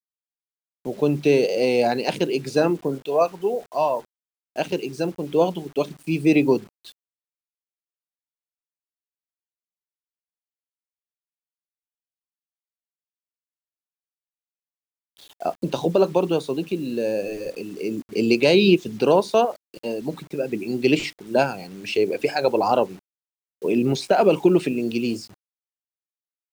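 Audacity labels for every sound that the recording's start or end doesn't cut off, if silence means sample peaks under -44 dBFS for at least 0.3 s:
0.850000	4.050000	sound
4.560000	6.920000	sound
15.170000	22.990000	sound
23.620000	25.340000	sound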